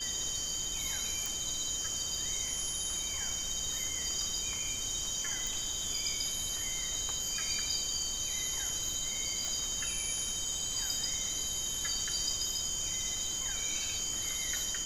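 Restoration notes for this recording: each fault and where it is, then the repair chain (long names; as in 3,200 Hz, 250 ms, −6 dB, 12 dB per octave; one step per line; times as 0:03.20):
whistle 3,100 Hz −40 dBFS
0:01.26: click
0:05.47: click
0:09.45: click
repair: click removal
notch filter 3,100 Hz, Q 30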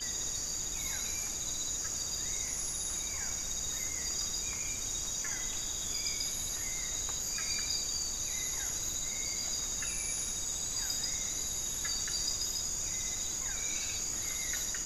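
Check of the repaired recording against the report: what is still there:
none of them is left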